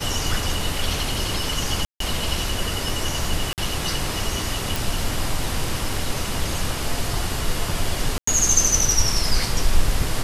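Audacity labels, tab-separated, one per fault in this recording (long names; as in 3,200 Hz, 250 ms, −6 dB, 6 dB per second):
1.850000	2.000000	drop-out 153 ms
3.530000	3.580000	drop-out 48 ms
4.760000	4.760000	click
8.180000	8.270000	drop-out 94 ms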